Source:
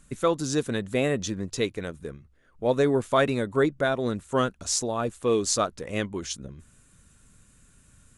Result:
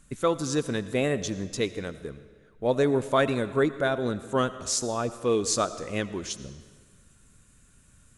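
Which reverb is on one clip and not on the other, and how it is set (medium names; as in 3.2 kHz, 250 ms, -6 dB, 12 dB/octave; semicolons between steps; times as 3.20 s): algorithmic reverb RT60 1.6 s, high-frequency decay 0.9×, pre-delay 45 ms, DRR 14 dB; trim -1 dB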